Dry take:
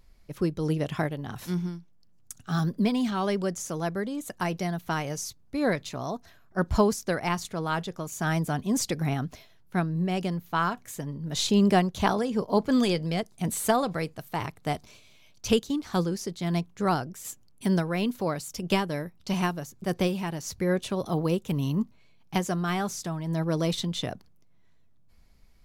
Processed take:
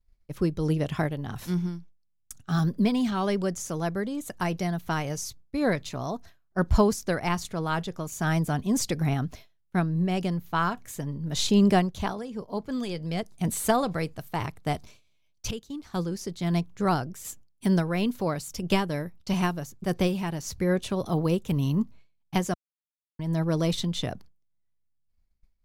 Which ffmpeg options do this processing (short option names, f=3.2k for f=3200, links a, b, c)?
-filter_complex "[0:a]asplit=6[a][b][c][d][e][f];[a]atrim=end=12.15,asetpts=PTS-STARTPTS,afade=t=out:st=11.71:d=0.44:silence=0.354813[g];[b]atrim=start=12.15:end=12.9,asetpts=PTS-STARTPTS,volume=-9dB[h];[c]atrim=start=12.9:end=15.51,asetpts=PTS-STARTPTS,afade=t=in:d=0.44:silence=0.354813,afade=t=out:st=2.606:d=0.004:c=hsin:silence=0.158489[i];[d]atrim=start=15.51:end=22.54,asetpts=PTS-STARTPTS,afade=t=in:d=0.95:silence=0.158489,afade=t=out:st=7.026:d=0.004:c=hsin[j];[e]atrim=start=22.54:end=23.19,asetpts=PTS-STARTPTS,volume=0[k];[f]atrim=start=23.19,asetpts=PTS-STARTPTS,afade=t=in:d=0.004:c=hsin[l];[g][h][i][j][k][l]concat=n=6:v=0:a=1,agate=range=-33dB:threshold=-43dB:ratio=3:detection=peak,lowshelf=f=86:g=9.5"